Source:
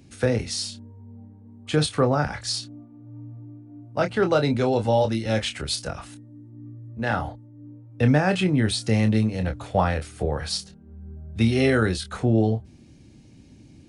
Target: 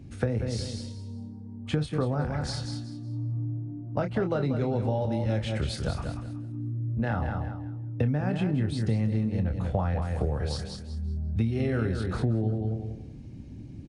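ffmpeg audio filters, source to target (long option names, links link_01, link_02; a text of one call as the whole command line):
ffmpeg -i in.wav -filter_complex "[0:a]lowshelf=frequency=190:gain=10.5,asplit=2[link_01][link_02];[link_02]aecho=0:1:189|378|567:0.376|0.094|0.0235[link_03];[link_01][link_03]amix=inputs=2:normalize=0,acompressor=threshold=-24dB:ratio=6,highshelf=frequency=2900:gain=-10.5,asplit=2[link_04][link_05];[link_05]asplit=3[link_06][link_07][link_08];[link_06]adelay=178,afreqshift=34,volume=-21dB[link_09];[link_07]adelay=356,afreqshift=68,volume=-29.9dB[link_10];[link_08]adelay=534,afreqshift=102,volume=-38.7dB[link_11];[link_09][link_10][link_11]amix=inputs=3:normalize=0[link_12];[link_04][link_12]amix=inputs=2:normalize=0" out.wav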